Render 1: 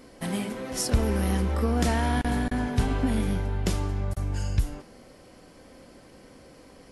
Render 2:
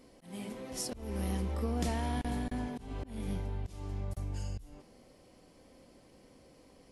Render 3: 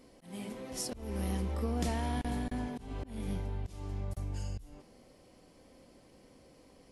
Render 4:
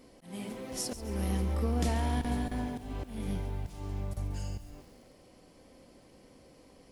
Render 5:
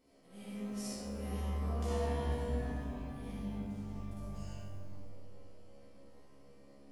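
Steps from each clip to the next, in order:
parametric band 1,500 Hz −6.5 dB 0.6 octaves; volume swells 274 ms; level −8.5 dB
no processing that can be heard
feedback echo at a low word length 137 ms, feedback 55%, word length 9 bits, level −13 dB; level +2 dB
tuned comb filter 69 Hz, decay 0.55 s, harmonics all, mix 90%; comb and all-pass reverb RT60 2.5 s, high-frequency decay 0.3×, pre-delay 20 ms, DRR −7 dB; level −3.5 dB

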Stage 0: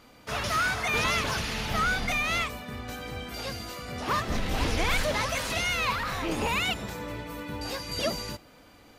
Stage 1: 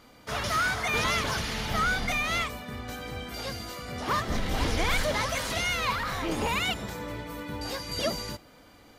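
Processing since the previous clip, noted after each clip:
notch filter 2,600 Hz, Q 13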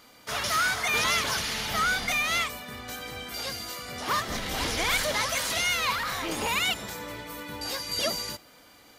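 spectral tilt +2 dB per octave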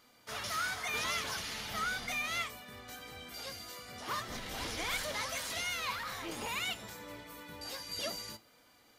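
flanger 0.46 Hz, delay 7.9 ms, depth 4.1 ms, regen +71%
level −5.5 dB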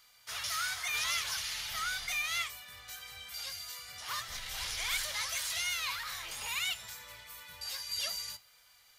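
guitar amp tone stack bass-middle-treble 10-0-10
level +5.5 dB

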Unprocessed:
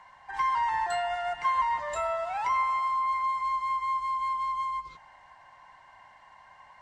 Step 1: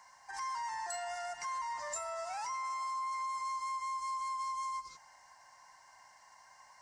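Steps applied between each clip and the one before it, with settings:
high shelf with overshoot 4,300 Hz +8 dB, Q 3
brickwall limiter −27 dBFS, peak gain reduction 8.5 dB
spectral tilt +2 dB per octave
level −6 dB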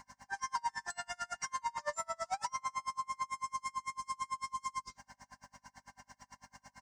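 comb filter 5.1 ms, depth 98%
hum with harmonics 50 Hz, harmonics 5, −66 dBFS 0 dB per octave
tremolo with a sine in dB 9 Hz, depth 35 dB
level +5.5 dB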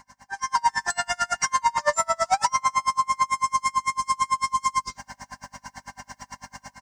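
automatic gain control gain up to 12 dB
level +3.5 dB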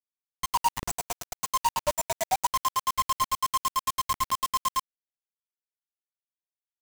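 wind on the microphone 82 Hz −41 dBFS
brick-wall band-stop 1,100–5,800 Hz
bit reduction 4 bits
level −4.5 dB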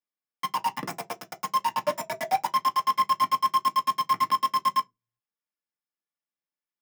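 convolution reverb RT60 0.15 s, pre-delay 3 ms, DRR 3 dB
level −6.5 dB

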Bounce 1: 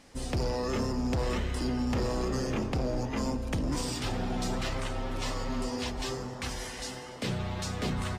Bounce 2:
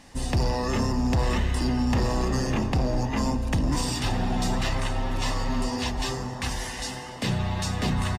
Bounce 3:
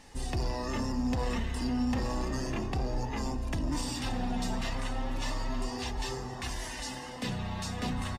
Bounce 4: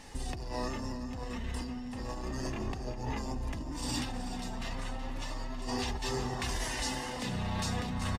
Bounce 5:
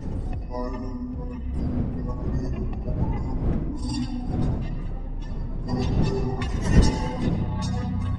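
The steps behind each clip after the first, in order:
comb filter 1.1 ms, depth 36%; level +5 dB
in parallel at +1.5 dB: brickwall limiter −28.5 dBFS, peak gain reduction 11.5 dB; on the sum: flanger 0.33 Hz, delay 2.2 ms, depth 2.3 ms, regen +48%; level −6 dB
compressor whose output falls as the input rises −36 dBFS, ratio −1; single-tap delay 374 ms −11.5 dB
expanding power law on the bin magnitudes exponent 1.8; wind on the microphone 160 Hz −34 dBFS; on a send at −7.5 dB: convolution reverb RT60 1.0 s, pre-delay 83 ms; on the sum: level +6 dB

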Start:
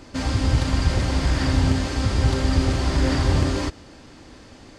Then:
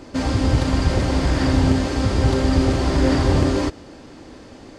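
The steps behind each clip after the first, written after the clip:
parametric band 410 Hz +6.5 dB 2.5 octaves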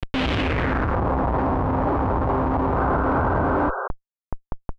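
comparator with hysteresis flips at −30.5 dBFS
low-pass filter sweep 3,100 Hz → 1,000 Hz, 0:00.35–0:01.03
sound drawn into the spectrogram noise, 0:02.76–0:03.88, 370–1,600 Hz −24 dBFS
level −3.5 dB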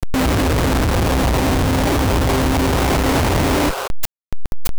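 each half-wave held at its own peak

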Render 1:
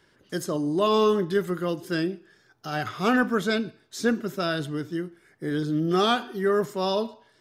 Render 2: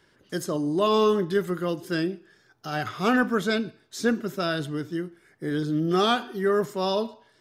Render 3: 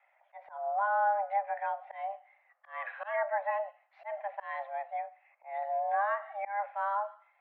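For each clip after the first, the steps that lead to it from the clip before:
no processing that can be heard
single-sideband voice off tune +400 Hz 180–2,200 Hz; volume swells 200 ms; treble cut that deepens with the level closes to 1,300 Hz, closed at −20 dBFS; level −6 dB

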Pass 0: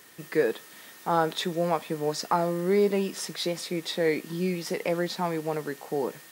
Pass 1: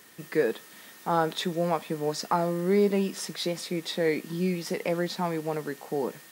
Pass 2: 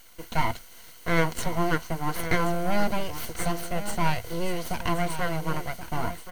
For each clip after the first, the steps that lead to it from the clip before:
parametric band 210 Hz +4 dB 0.54 octaves; level −1 dB
full-wave rectification; EQ curve with evenly spaced ripples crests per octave 1.9, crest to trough 8 dB; single-tap delay 1,078 ms −11.5 dB; level +2.5 dB

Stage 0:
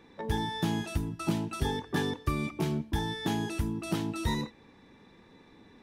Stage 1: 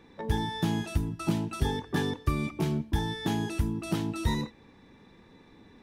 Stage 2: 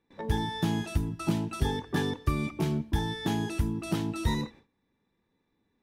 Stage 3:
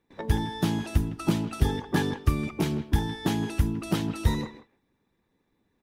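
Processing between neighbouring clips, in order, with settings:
low-shelf EQ 160 Hz +4.5 dB
noise gate with hold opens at −43 dBFS
harmonic and percussive parts rebalanced harmonic −8 dB; far-end echo of a speakerphone 160 ms, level −13 dB; level +6.5 dB

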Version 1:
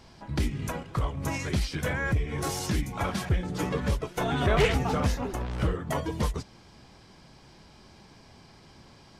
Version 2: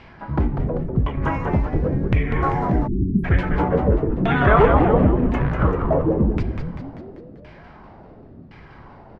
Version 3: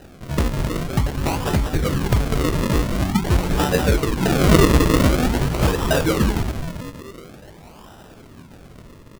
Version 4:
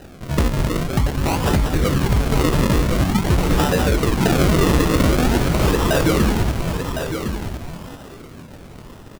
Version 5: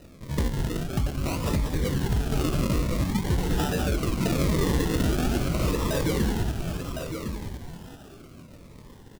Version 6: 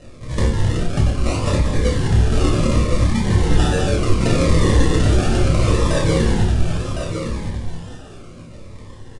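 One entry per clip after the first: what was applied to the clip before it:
auto-filter low-pass saw down 0.94 Hz 210–2,500 Hz; echo with shifted repeats 195 ms, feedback 56%, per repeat −110 Hz, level −5 dB; time-frequency box erased 0:02.87–0:03.24, 430–10,000 Hz; level +7 dB
high-shelf EQ 2,800 Hz +12 dB; sample-and-hold swept by an LFO 39×, swing 100% 0.47 Hz
brickwall limiter −12.5 dBFS, peak gain reduction 10 dB; on a send: single-tap delay 1,058 ms −7.5 dB; on the sum: level +3 dB
phaser whose notches keep moving one way falling 0.7 Hz; level −7.5 dB
double-tracking delay 30 ms −6.5 dB; convolution reverb RT60 0.45 s, pre-delay 4 ms, DRR 0.5 dB; downsampling to 22,050 Hz; level +3.5 dB

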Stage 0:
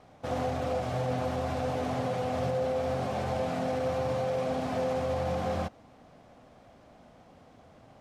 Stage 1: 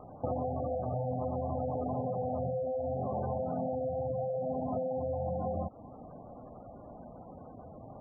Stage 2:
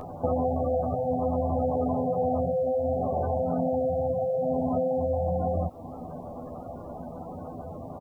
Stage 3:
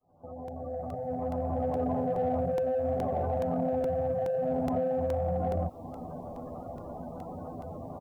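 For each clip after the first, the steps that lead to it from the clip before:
low-pass filter 2,700 Hz 6 dB per octave; downward compressor 16 to 1, threshold −37 dBFS, peak gain reduction 11.5 dB; gate on every frequency bin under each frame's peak −15 dB strong; level +7.5 dB
in parallel at +2.5 dB: upward compression, threshold −36 dBFS; on the sum: bit-depth reduction 12 bits, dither triangular; double-tracking delay 12 ms −3.5 dB; level −2.5 dB
fade in at the beginning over 1.91 s; in parallel at −7.5 dB: soft clipping −28.5 dBFS, distortion −10 dB; on the sum: regular buffer underruns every 0.42 s, samples 64, repeat, from 0:00.48; level −4.5 dB

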